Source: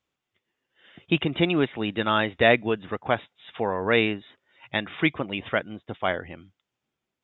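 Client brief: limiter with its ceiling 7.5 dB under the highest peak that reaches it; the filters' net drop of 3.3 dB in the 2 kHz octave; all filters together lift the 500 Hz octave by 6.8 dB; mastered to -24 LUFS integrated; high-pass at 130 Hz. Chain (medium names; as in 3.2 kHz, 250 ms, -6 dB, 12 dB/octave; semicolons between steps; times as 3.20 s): high-pass 130 Hz; peaking EQ 500 Hz +8.5 dB; peaking EQ 2 kHz -4.5 dB; trim +0.5 dB; peak limiter -10 dBFS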